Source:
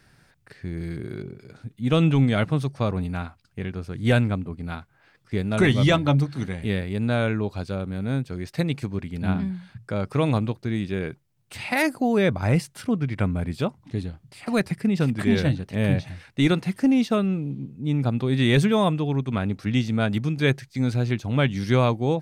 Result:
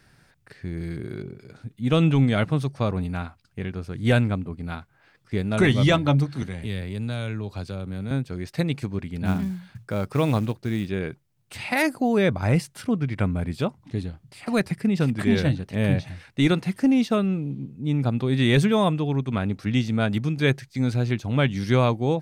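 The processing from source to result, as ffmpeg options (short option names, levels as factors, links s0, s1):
-filter_complex "[0:a]asettb=1/sr,asplit=3[s0][s1][s2];[s0]atrim=end=6.424[s3];[s1]atrim=start=6.42:end=8.11,asetpts=PTS-STARTPTS,afade=t=in:d=0.004:c=qsin,afade=t=out:st=1.686:d=0.004:c=qsin,acrossover=split=120|3000[s4][s5][s6];[s5]acompressor=threshold=0.0282:ratio=4:attack=3.2:release=140:knee=2.83:detection=peak[s7];[s4][s7][s6]amix=inputs=3:normalize=0[s8];[s2]atrim=start=8.106[s9];[s3][s8]acrossfade=d=0.004:c1=hsin:c2=qsin[s10];[s10][s9]acrossfade=d=0.004:c1=qsin:c2=hsin,asettb=1/sr,asplit=3[s11][s12][s13];[s11]atrim=end=9.254[s14];[s12]atrim=start=9.25:end=10.89,asetpts=PTS-STARTPTS,afade=t=in:d=0.004:c=qsin,afade=t=out:st=1.636:d=0.004:c=qsin,acrusher=bits=7:mode=log:mix=0:aa=0.000001[s15];[s13]atrim=start=10.886[s16];[s14][s15]acrossfade=d=0.004:c1=hsin:c2=qsin[s17];[s17][s16]acrossfade=d=0.004:c1=qsin:c2=hsin"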